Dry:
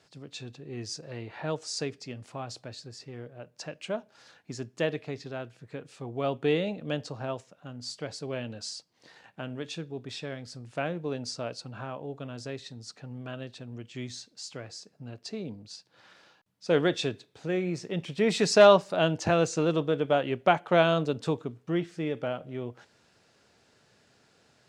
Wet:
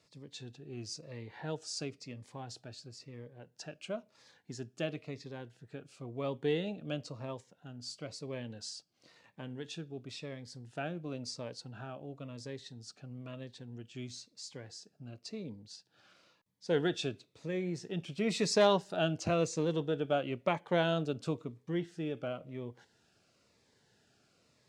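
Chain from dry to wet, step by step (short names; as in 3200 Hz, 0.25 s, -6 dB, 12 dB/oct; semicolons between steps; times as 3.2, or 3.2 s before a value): cascading phaser falling 0.98 Hz; gain -5 dB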